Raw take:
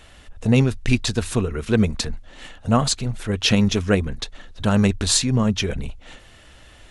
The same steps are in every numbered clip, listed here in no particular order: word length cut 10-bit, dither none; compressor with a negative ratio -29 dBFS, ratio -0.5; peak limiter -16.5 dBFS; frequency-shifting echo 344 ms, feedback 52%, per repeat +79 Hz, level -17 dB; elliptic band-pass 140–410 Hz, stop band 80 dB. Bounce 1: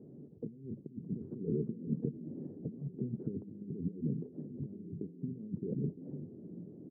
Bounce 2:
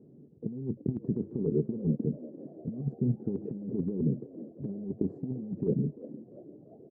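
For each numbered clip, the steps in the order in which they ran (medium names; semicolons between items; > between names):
word length cut > compressor with a negative ratio > frequency-shifting echo > elliptic band-pass > peak limiter; word length cut > elliptic band-pass > peak limiter > compressor with a negative ratio > frequency-shifting echo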